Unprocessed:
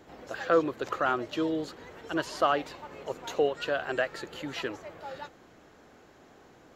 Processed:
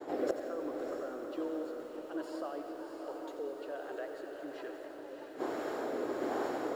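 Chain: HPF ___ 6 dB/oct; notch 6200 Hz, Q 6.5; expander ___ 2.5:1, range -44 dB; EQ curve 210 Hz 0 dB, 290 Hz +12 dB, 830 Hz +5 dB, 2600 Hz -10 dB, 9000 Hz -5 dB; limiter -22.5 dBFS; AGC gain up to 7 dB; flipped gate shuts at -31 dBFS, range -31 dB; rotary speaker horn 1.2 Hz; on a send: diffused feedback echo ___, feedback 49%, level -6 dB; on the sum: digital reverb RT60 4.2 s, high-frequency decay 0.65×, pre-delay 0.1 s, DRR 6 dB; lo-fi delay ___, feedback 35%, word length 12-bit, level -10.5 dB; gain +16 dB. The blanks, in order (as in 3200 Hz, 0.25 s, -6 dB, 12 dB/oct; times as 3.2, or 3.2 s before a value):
900 Hz, -57 dBFS, 0.659 s, 89 ms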